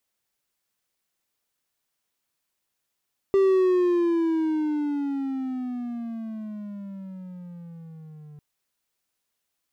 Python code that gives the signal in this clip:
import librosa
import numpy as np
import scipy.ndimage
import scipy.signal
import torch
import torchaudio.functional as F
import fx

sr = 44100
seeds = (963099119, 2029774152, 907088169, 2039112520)

y = fx.riser_tone(sr, length_s=5.05, level_db=-13.5, wave='triangle', hz=393.0, rise_st=-17.0, swell_db=-26.5)